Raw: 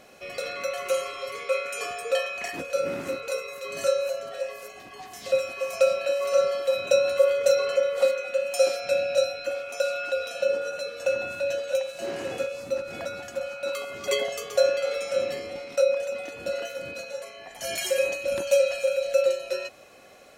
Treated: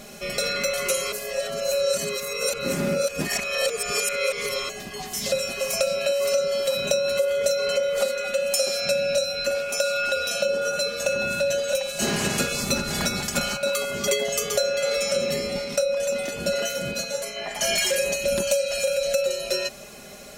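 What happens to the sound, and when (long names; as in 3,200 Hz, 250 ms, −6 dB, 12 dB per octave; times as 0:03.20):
0:01.12–0:04.69: reverse
0:11.99–0:13.56: ceiling on every frequency bin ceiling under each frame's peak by 18 dB
0:17.36–0:17.96: mid-hump overdrive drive 13 dB, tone 2,200 Hz, clips at −14 dBFS
whole clip: bass and treble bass +11 dB, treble +9 dB; comb filter 4.9 ms, depth 68%; downward compressor 6 to 1, threshold −25 dBFS; level +5 dB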